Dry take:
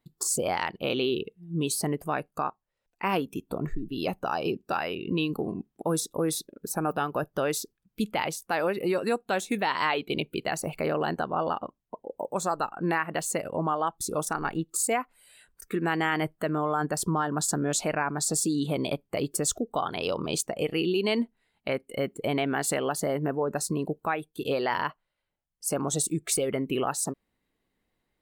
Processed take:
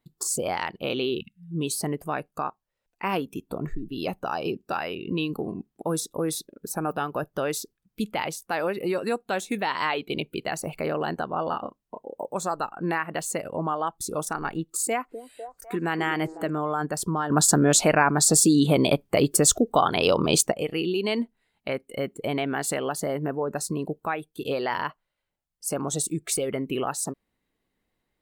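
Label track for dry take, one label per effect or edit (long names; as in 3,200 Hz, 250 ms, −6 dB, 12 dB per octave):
1.200000	1.520000	time-frequency box erased 240–1,300 Hz
11.490000	12.230000	double-tracking delay 29 ms −4 dB
14.620000	16.500000	echo through a band-pass that steps 250 ms, band-pass from 360 Hz, each repeat 0.7 octaves, level −7 dB
17.300000	20.520000	clip gain +8.5 dB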